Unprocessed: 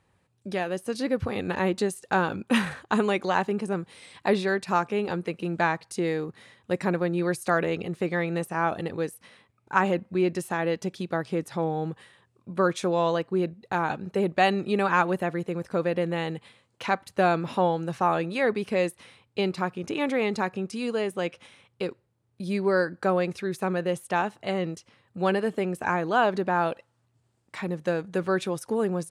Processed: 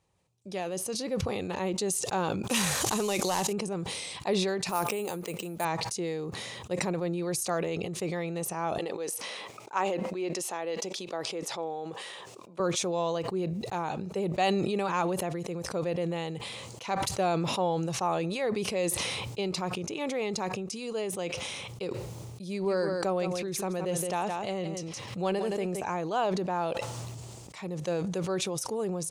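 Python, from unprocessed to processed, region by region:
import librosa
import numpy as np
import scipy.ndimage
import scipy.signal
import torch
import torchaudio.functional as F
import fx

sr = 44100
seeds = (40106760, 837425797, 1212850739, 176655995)

y = fx.chain(x, sr, fx.cvsd(bps=64000),
    fx.high_shelf(hz=3900.0, db=11.5),
    fx.pre_swell(db_per_s=20.0), at=(2.49, 3.53))
y = fx.chain(y, sr, fx.low_shelf(hz=180.0, db=-9.0),
    fx.resample_bad(factor=4, down='none', up='hold'), at=(4.69, 5.65))
y = fx.chain(y, sr, fx.highpass(hz=370.0, slope=12),
    fx.high_shelf(hz=8800.0, db=-8.0), at=(8.78, 12.6))
y = fx.chain(y, sr, fx.echo_single(ms=168, db=-11.0),
    fx.pre_swell(db_per_s=80.0), at=(22.49, 25.82))
y = fx.graphic_eq_15(y, sr, hz=(100, 250, 1600, 6300), db=(-3, -6, -10, 7))
y = fx.sustainer(y, sr, db_per_s=22.0)
y = y * librosa.db_to_amplitude(-4.5)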